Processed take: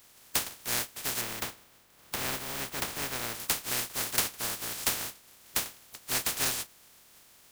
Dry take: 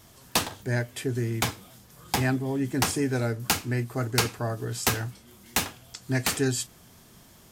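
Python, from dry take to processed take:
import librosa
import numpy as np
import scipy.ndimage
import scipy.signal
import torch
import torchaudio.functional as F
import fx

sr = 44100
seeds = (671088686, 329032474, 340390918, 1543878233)

y = fx.spec_flatten(x, sr, power=0.12)
y = fx.peak_eq(y, sr, hz=10000.0, db=-7.5, octaves=2.8, at=(1.21, 3.35))
y = y * 10.0 ** (-4.0 / 20.0)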